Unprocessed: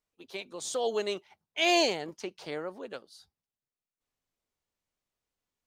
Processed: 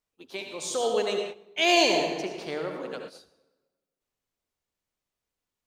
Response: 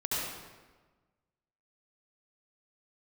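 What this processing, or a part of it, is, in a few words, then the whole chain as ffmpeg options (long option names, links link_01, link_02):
keyed gated reverb: -filter_complex "[0:a]asplit=3[link_01][link_02][link_03];[1:a]atrim=start_sample=2205[link_04];[link_02][link_04]afir=irnorm=-1:irlink=0[link_05];[link_03]apad=whole_len=249668[link_06];[link_05][link_06]sidechaingate=range=-14dB:threshold=-51dB:ratio=16:detection=peak,volume=-6.5dB[link_07];[link_01][link_07]amix=inputs=2:normalize=0"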